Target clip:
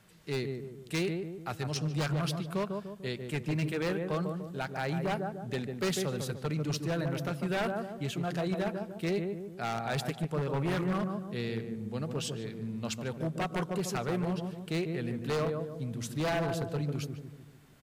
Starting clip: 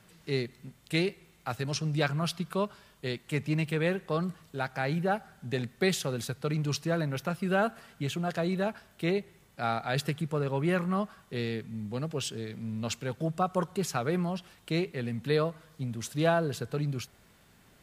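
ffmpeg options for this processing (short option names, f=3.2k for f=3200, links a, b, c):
-filter_complex "[0:a]asplit=2[a][b];[b]adelay=148,lowpass=f=810:p=1,volume=-4dB,asplit=2[c][d];[d]adelay=148,lowpass=f=810:p=1,volume=0.53,asplit=2[e][f];[f]adelay=148,lowpass=f=810:p=1,volume=0.53,asplit=2[g][h];[h]adelay=148,lowpass=f=810:p=1,volume=0.53,asplit=2[i][j];[j]adelay=148,lowpass=f=810:p=1,volume=0.53,asplit=2[k][l];[l]adelay=148,lowpass=f=810:p=1,volume=0.53,asplit=2[m][n];[n]adelay=148,lowpass=f=810:p=1,volume=0.53[o];[a][c][e][g][i][k][m][o]amix=inputs=8:normalize=0,aeval=exprs='0.0794*(abs(mod(val(0)/0.0794+3,4)-2)-1)':c=same,volume=-2.5dB"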